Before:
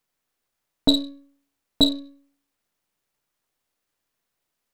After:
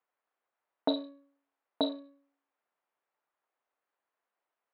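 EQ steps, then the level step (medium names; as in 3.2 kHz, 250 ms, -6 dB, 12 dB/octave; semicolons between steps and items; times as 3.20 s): high-pass 600 Hz 6 dB/octave; band-pass filter 800 Hz, Q 0.76; distance through air 290 m; +3.0 dB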